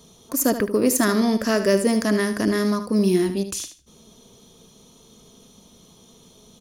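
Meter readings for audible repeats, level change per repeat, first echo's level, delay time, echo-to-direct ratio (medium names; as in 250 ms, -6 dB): 2, -14.0 dB, -10.5 dB, 76 ms, -10.5 dB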